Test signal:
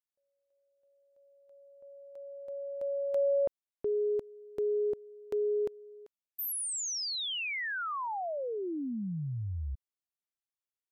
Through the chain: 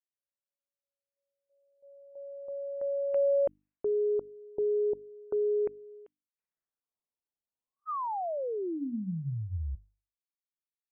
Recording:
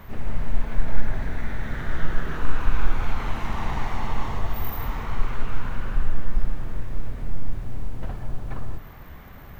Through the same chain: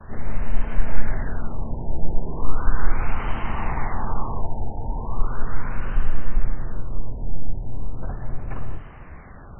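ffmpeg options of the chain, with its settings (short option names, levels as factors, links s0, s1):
-af "agate=range=0.0224:threshold=0.00447:ratio=3:release=457:detection=peak,bandreject=f=50:t=h:w=6,bandreject=f=100:t=h:w=6,bandreject=f=150:t=h:w=6,bandreject=f=200:t=h:w=6,bandreject=f=250:t=h:w=6,bandreject=f=300:t=h:w=6,afftfilt=real='re*lt(b*sr/1024,930*pow(3200/930,0.5+0.5*sin(2*PI*0.37*pts/sr)))':imag='im*lt(b*sr/1024,930*pow(3200/930,0.5+0.5*sin(2*PI*0.37*pts/sr)))':win_size=1024:overlap=0.75,volume=1.26"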